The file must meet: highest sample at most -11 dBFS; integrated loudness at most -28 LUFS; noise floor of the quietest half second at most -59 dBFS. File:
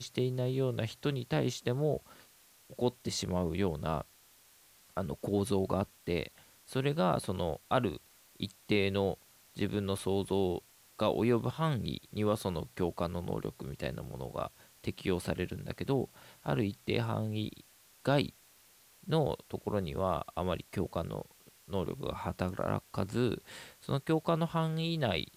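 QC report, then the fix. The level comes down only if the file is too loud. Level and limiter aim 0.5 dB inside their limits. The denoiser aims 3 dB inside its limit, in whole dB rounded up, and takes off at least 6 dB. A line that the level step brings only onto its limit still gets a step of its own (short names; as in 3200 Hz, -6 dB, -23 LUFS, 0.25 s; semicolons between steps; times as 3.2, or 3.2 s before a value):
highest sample -15.0 dBFS: OK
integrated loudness -34.5 LUFS: OK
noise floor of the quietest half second -62 dBFS: OK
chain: none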